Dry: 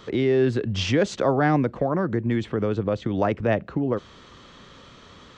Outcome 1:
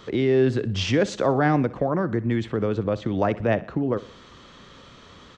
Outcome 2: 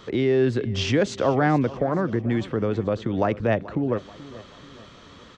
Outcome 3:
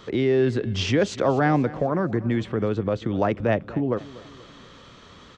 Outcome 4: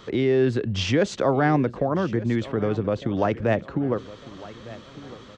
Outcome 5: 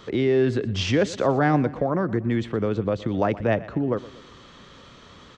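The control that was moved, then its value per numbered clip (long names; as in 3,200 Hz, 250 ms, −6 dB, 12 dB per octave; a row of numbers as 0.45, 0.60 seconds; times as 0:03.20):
repeating echo, delay time: 61, 433, 242, 1,204, 119 milliseconds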